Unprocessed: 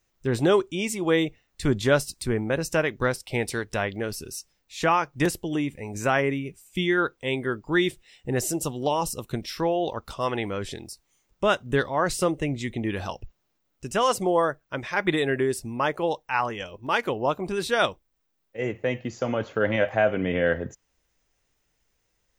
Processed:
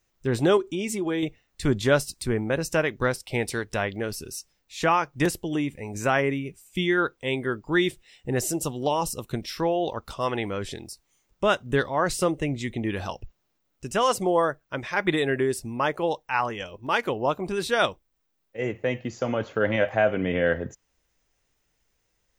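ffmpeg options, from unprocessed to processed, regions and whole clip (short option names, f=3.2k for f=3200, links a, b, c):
-filter_complex "[0:a]asettb=1/sr,asplit=3[a][b][c];[a]atrim=end=0.574[d];[b]atrim=start=0.57:end=1.23,asetpts=PTS-STARTPTS,afade=t=in:d=0.004:c=qsin,afade=t=out:st=0.656:d=0.004:c=qsin,equalizer=f=320:w=3:g=10,aecho=1:1:4.9:0.5,atrim=end_sample=29106,acompressor=threshold=-26dB:ratio=3:attack=3.2:release=140:knee=1:detection=peak[e];[c]atrim=start=1.226[f];[d][e]acrossfade=d=0.004:c1=hsin:c2=qsin[g];[g][f]acrossfade=d=0.004:c1=qsin:c2=hsin"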